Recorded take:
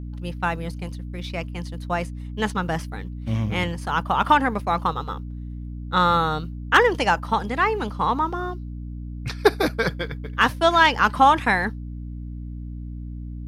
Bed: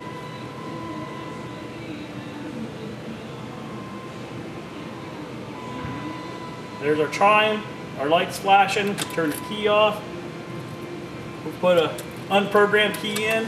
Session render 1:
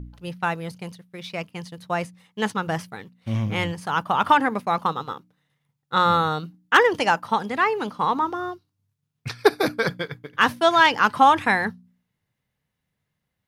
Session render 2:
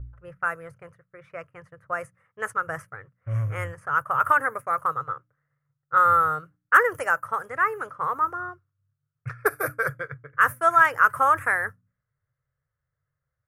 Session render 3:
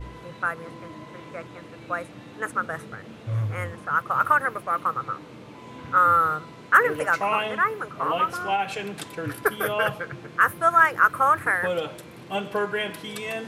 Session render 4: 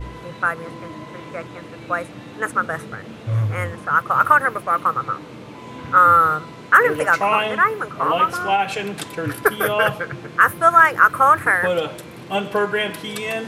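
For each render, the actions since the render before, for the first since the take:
de-hum 60 Hz, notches 5
low-pass opened by the level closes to 1700 Hz, open at -18 dBFS; EQ curve 140 Hz 0 dB, 190 Hz -27 dB, 560 Hz -2 dB, 860 Hz -14 dB, 1300 Hz +5 dB, 1900 Hz -3 dB, 3900 Hz -30 dB, 7000 Hz -5 dB, 9900 Hz +5 dB, 14000 Hz +10 dB
add bed -9 dB
gain +6 dB; limiter -1 dBFS, peak gain reduction 3 dB

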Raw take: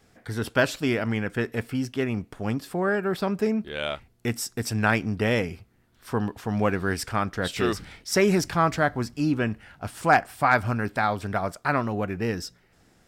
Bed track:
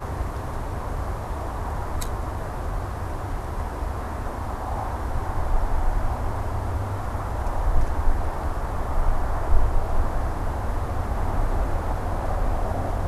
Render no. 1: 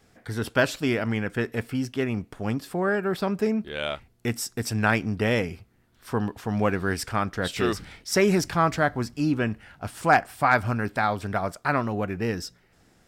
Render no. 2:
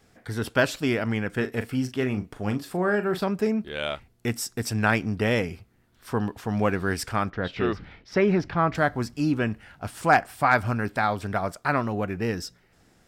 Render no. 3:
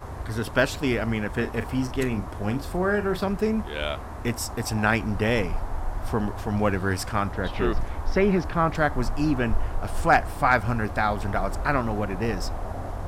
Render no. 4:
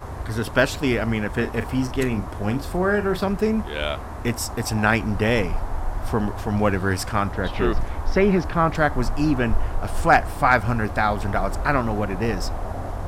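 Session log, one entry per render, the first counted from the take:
nothing audible
1.29–3.24 doubler 39 ms -10 dB; 7.3–8.75 air absorption 280 m
add bed track -6.5 dB
gain +3 dB

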